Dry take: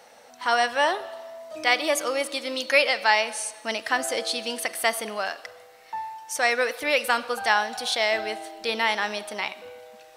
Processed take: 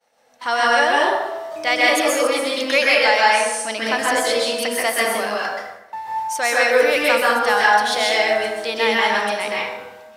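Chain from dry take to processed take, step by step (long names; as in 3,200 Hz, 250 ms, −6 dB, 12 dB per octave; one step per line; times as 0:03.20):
downward expander −41 dBFS
in parallel at −9 dB: soft clipping −15 dBFS, distortion −13 dB
on the sum: dense smooth reverb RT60 0.95 s, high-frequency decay 0.5×, pre-delay 115 ms, DRR −5 dB
level −1 dB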